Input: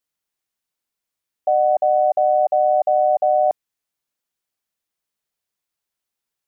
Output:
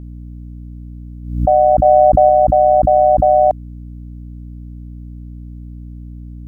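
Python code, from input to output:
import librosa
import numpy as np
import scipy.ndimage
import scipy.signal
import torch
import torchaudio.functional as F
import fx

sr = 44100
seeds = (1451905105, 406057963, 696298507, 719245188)

y = fx.low_shelf(x, sr, hz=460.0, db=6.0, at=(1.85, 2.29))
y = fx.add_hum(y, sr, base_hz=60, snr_db=16)
y = fx.pre_swell(y, sr, db_per_s=78.0)
y = y * librosa.db_to_amplitude(5.5)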